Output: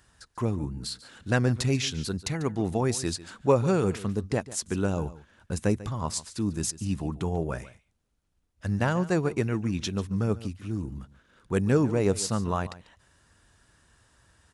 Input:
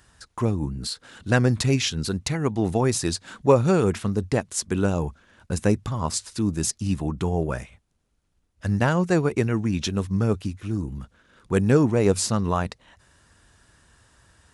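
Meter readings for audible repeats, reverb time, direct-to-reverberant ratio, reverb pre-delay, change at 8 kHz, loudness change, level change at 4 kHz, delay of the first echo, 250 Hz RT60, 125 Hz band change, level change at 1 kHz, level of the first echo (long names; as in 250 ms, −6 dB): 1, no reverb audible, no reverb audible, no reverb audible, −4.5 dB, −4.5 dB, −4.5 dB, 144 ms, no reverb audible, −4.5 dB, −4.5 dB, −17.0 dB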